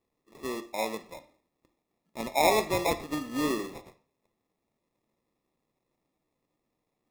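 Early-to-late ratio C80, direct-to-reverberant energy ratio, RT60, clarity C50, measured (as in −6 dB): 19.0 dB, 10.0 dB, 0.45 s, 15.0 dB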